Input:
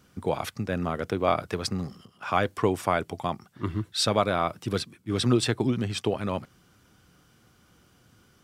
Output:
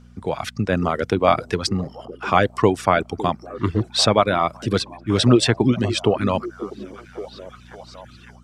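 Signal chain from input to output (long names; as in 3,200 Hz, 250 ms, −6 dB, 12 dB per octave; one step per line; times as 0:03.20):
low-pass filter 8,100 Hz 12 dB per octave
echo through a band-pass that steps 556 ms, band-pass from 290 Hz, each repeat 0.7 octaves, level −11 dB
automatic gain control gain up to 9.5 dB
reverb reduction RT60 0.6 s
hum with harmonics 60 Hz, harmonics 4, −48 dBFS −3 dB per octave
level +1 dB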